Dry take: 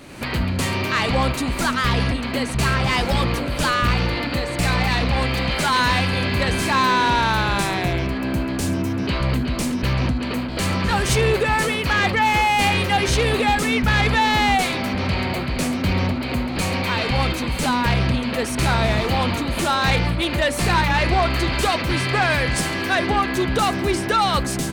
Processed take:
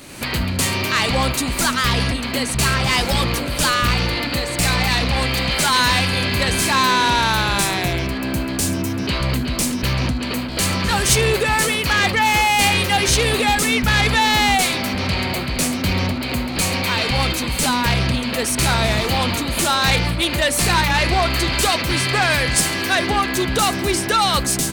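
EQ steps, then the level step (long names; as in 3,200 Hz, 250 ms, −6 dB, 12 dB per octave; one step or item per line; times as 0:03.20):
high-shelf EQ 3,900 Hz +11.5 dB
0.0 dB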